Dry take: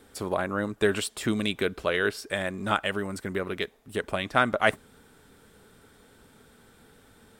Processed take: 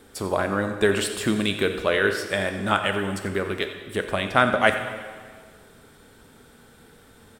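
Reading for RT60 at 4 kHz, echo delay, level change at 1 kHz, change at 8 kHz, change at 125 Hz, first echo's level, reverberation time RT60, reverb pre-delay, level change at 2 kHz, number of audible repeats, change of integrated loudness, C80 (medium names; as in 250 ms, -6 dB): 1.6 s, 88 ms, +4.5 dB, +4.5 dB, +4.5 dB, -15.0 dB, 1.7 s, 7 ms, +4.5 dB, 1, +4.5 dB, 8.5 dB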